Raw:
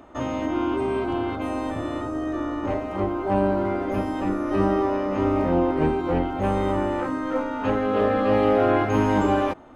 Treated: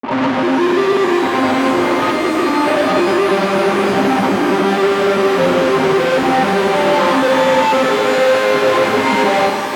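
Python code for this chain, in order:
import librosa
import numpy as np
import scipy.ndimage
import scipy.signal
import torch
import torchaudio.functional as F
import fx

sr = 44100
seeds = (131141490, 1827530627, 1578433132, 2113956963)

p1 = fx.spec_expand(x, sr, power=2.1)
p2 = fx.peak_eq(p1, sr, hz=880.0, db=7.5, octaves=0.47)
p3 = fx.rider(p2, sr, range_db=3, speed_s=0.5)
p4 = p2 + (p3 * 10.0 ** (-0.5 / 20.0))
p5 = fx.granulator(p4, sr, seeds[0], grain_ms=100.0, per_s=20.0, spray_ms=100.0, spread_st=0)
p6 = fx.fixed_phaser(p5, sr, hz=460.0, stages=8)
p7 = fx.fuzz(p6, sr, gain_db=44.0, gate_db=-50.0)
p8 = fx.bandpass_edges(p7, sr, low_hz=150.0, high_hz=3300.0)
p9 = fx.rev_shimmer(p8, sr, seeds[1], rt60_s=3.8, semitones=12, shimmer_db=-8, drr_db=3.5)
y = p9 * 10.0 ** (-1.0 / 20.0)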